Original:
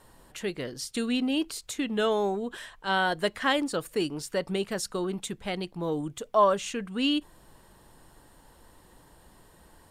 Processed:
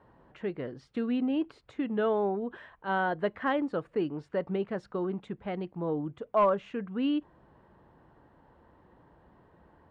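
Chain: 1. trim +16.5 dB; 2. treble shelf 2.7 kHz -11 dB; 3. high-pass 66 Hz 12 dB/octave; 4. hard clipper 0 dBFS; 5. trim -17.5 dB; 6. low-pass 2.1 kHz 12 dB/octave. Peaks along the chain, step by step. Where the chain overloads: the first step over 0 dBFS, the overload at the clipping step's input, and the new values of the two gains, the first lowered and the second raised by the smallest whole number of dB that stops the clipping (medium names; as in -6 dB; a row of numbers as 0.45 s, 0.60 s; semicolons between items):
+6.0 dBFS, +5.0 dBFS, +5.0 dBFS, 0.0 dBFS, -17.5 dBFS, -17.0 dBFS; step 1, 5.0 dB; step 1 +11.5 dB, step 5 -12.5 dB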